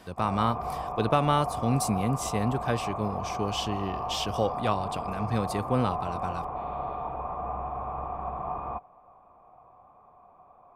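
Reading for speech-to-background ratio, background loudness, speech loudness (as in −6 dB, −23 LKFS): 4.5 dB, −34.0 LKFS, −29.5 LKFS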